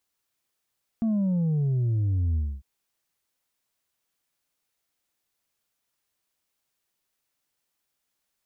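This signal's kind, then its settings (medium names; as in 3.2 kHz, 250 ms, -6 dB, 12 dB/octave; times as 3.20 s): sub drop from 230 Hz, over 1.60 s, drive 3 dB, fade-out 0.26 s, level -22 dB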